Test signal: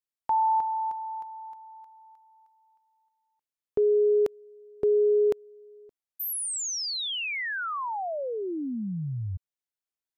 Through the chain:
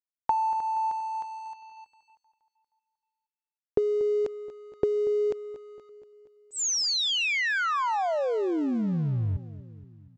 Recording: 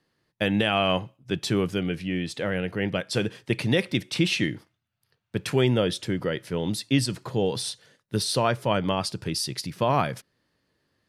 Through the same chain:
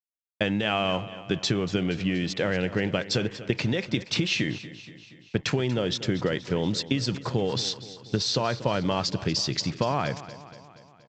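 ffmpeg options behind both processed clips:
-af "anlmdn=0.01,alimiter=limit=-14.5dB:level=0:latency=1:release=298,acompressor=threshold=-31dB:ratio=10:attack=40:release=108:knee=1:detection=peak,aresample=16000,aeval=exprs='sgn(val(0))*max(abs(val(0))-0.002,0)':c=same,aresample=44100,aecho=1:1:237|474|711|948|1185|1422:0.168|0.0974|0.0565|0.0328|0.019|0.011,volume=5.5dB"

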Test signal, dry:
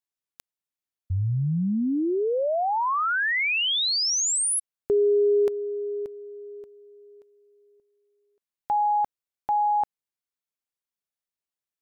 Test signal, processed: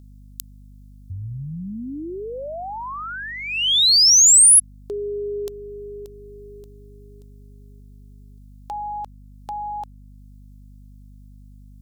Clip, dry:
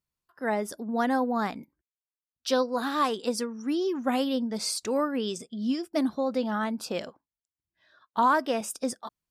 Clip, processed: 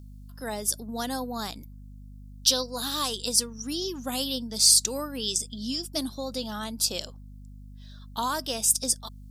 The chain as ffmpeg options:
-filter_complex "[0:a]asplit=2[a][b];[b]acompressor=threshold=-38dB:ratio=6:attack=51:release=391:detection=rms,volume=1.5dB[c];[a][c]amix=inputs=2:normalize=0,aeval=exprs='val(0)+0.0178*(sin(2*PI*50*n/s)+sin(2*PI*2*50*n/s)/2+sin(2*PI*3*50*n/s)/3+sin(2*PI*4*50*n/s)/4+sin(2*PI*5*50*n/s)/5)':c=same,aexciter=amount=7.2:drive=5.9:freq=3.1k,volume=-8.5dB"

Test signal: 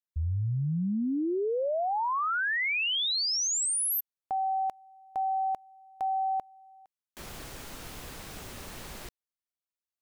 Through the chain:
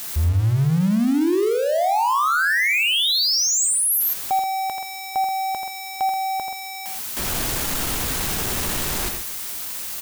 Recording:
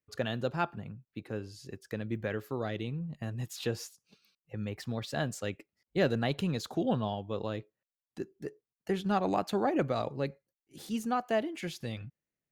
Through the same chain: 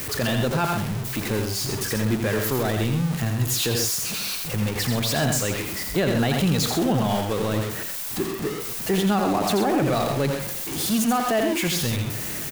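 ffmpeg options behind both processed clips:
-af "aeval=exprs='val(0)+0.5*0.0188*sgn(val(0))':c=same,highshelf=f=7.2k:g=7,aecho=1:1:84|130:0.473|0.316,alimiter=limit=-22dB:level=0:latency=1:release=12,equalizer=f=520:t=o:w=0.36:g=-3,volume=8.5dB"

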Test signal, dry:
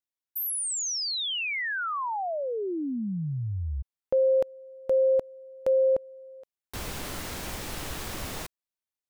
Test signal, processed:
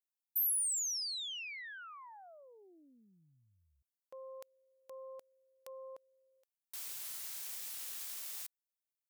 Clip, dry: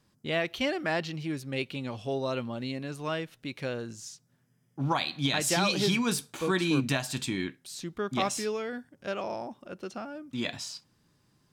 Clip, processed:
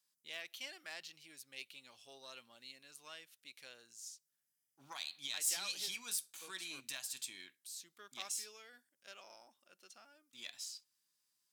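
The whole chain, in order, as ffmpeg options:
-af "aeval=exprs='0.178*(cos(1*acos(clip(val(0)/0.178,-1,1)))-cos(1*PI/2))+0.0355*(cos(2*acos(clip(val(0)/0.178,-1,1)))-cos(2*PI/2))':c=same,aderivative,volume=-5dB"

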